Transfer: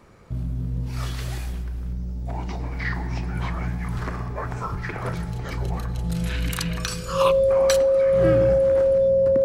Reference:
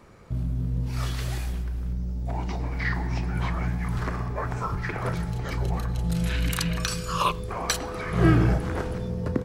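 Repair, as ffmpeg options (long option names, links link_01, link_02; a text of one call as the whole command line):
ffmpeg -i in.wav -af "bandreject=frequency=540:width=30,asetnsamples=nb_out_samples=441:pad=0,asendcmd='7.82 volume volume 4.5dB',volume=0dB" out.wav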